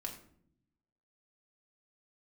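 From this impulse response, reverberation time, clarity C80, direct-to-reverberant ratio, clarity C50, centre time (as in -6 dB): 0.65 s, 12.0 dB, 0.5 dB, 8.5 dB, 18 ms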